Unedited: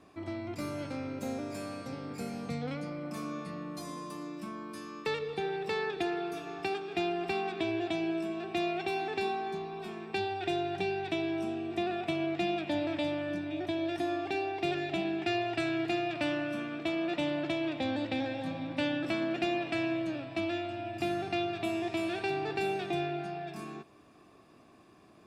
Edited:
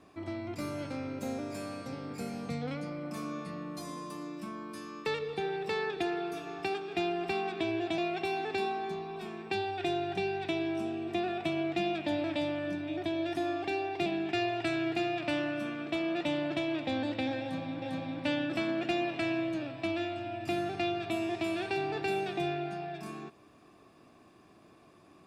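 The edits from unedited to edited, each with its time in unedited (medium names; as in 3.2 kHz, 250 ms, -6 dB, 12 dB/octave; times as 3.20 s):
7.98–8.61 s: delete
14.69–14.99 s: delete
18.35–18.75 s: loop, 2 plays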